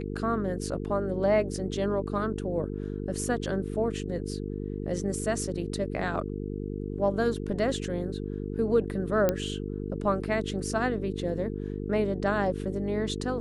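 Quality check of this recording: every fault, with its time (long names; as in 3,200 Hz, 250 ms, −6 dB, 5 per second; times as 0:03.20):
mains buzz 50 Hz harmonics 9 −34 dBFS
0:09.29: click −11 dBFS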